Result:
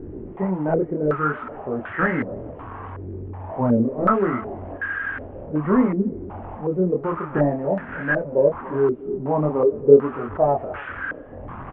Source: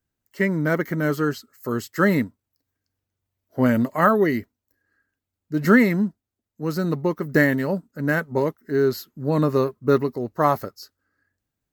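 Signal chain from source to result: one-bit delta coder 16 kbps, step -27.5 dBFS; in parallel at -8.5 dB: short-mantissa float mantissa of 2-bit; on the sum: chorus voices 2, 0.63 Hz, delay 24 ms, depth 3.1 ms; speakerphone echo 280 ms, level -15 dB; step-sequenced low-pass 2.7 Hz 370–1600 Hz; trim -3 dB

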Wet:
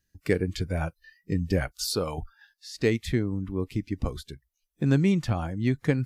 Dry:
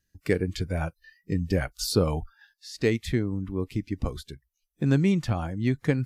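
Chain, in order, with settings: 1.71–2.18 s: bass shelf 370 Hz -11 dB

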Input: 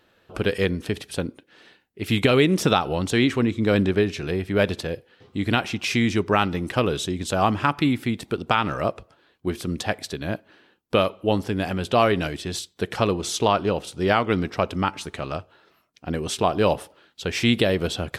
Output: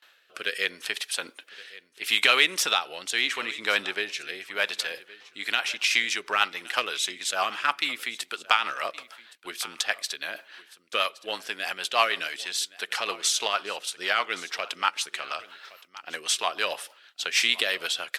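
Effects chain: in parallel at -11 dB: hard clipper -15 dBFS, distortion -14 dB; on the sum: high-pass 1.4 kHz 12 dB/octave; gate with hold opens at -54 dBFS; rotary cabinet horn 0.75 Hz, later 6.3 Hz, at 4.70 s; reverse; upward compressor, threshold -41 dBFS; reverse; delay 1118 ms -19.5 dB; trim +5 dB

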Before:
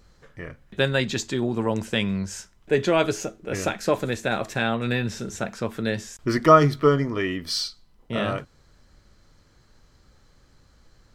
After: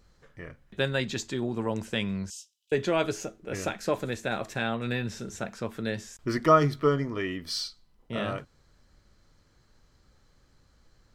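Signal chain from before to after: 2.30–2.72 s: steep high-pass 2.8 kHz 72 dB/octave; trim -5.5 dB

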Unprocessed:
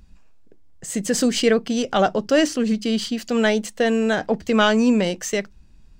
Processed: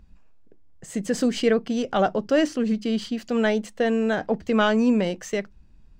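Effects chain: treble shelf 3.4 kHz -9.5 dB; trim -2.5 dB

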